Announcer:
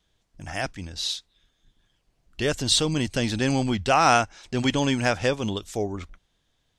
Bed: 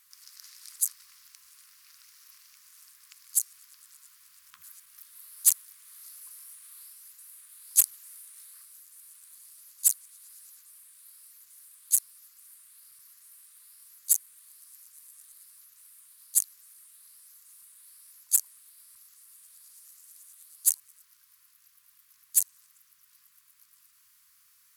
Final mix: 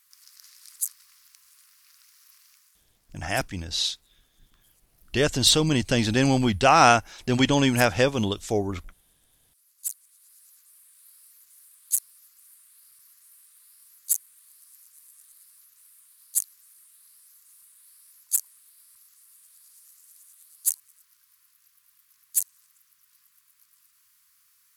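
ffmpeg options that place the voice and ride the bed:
-filter_complex "[0:a]adelay=2750,volume=2.5dB[a];[1:a]volume=11.5dB,afade=t=out:st=2.52:d=0.31:silence=0.237137,afade=t=in:st=9.52:d=1.5:silence=0.223872[b];[a][b]amix=inputs=2:normalize=0"

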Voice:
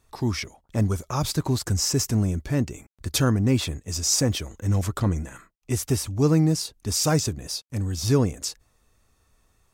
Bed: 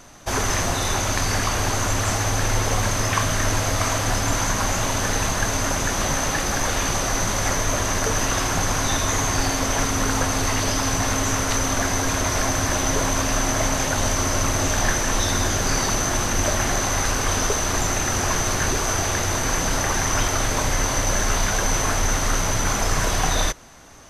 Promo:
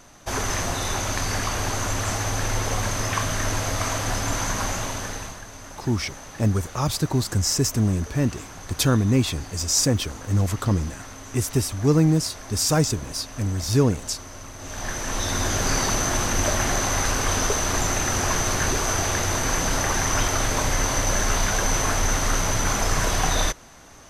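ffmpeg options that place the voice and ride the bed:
-filter_complex "[0:a]adelay=5650,volume=1.5dB[a];[1:a]volume=13.5dB,afade=t=out:st=4.63:d=0.8:silence=0.188365,afade=t=in:st=14.58:d=1.05:silence=0.141254[b];[a][b]amix=inputs=2:normalize=0"

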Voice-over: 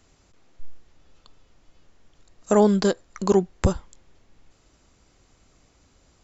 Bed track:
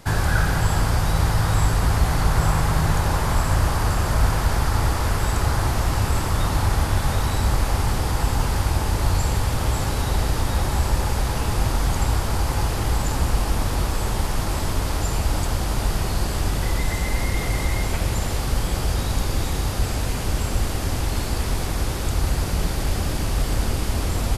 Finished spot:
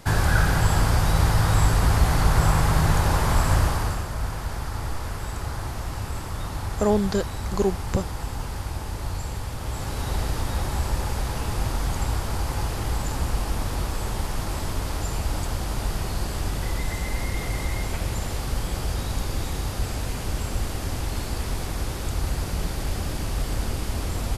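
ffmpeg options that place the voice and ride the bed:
-filter_complex "[0:a]adelay=4300,volume=-4dB[a];[1:a]volume=5dB,afade=t=out:st=3.54:d=0.54:silence=0.334965,afade=t=in:st=9.6:d=0.53:silence=0.562341[b];[a][b]amix=inputs=2:normalize=0"

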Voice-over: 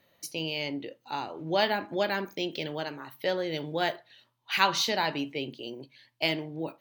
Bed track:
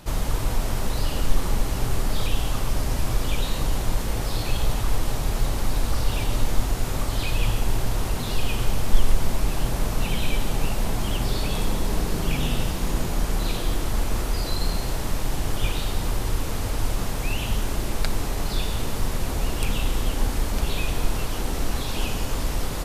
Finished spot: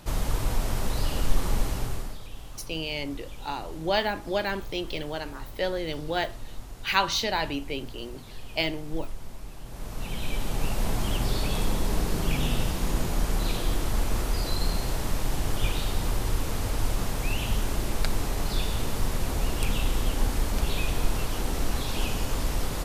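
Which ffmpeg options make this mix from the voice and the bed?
-filter_complex "[0:a]adelay=2350,volume=0.5dB[a];[1:a]volume=13dB,afade=t=out:st=1.64:d=0.55:silence=0.177828,afade=t=in:st=9.65:d=1.24:silence=0.16788[b];[a][b]amix=inputs=2:normalize=0"

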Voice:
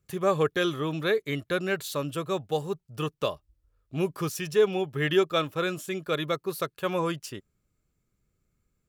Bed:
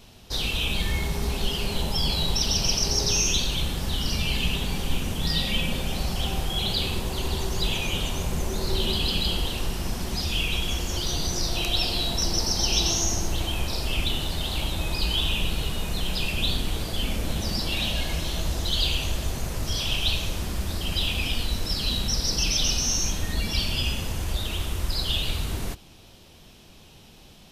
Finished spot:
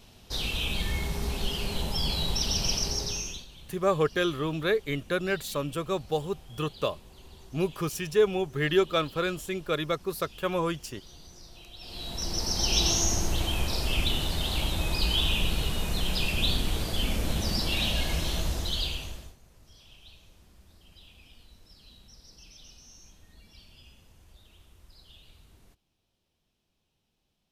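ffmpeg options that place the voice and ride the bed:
-filter_complex "[0:a]adelay=3600,volume=-0.5dB[a];[1:a]volume=18dB,afade=t=out:st=2.75:d=0.71:silence=0.112202,afade=t=in:st=11.79:d=1.06:silence=0.0794328,afade=t=out:st=18.32:d=1.04:silence=0.0446684[b];[a][b]amix=inputs=2:normalize=0"

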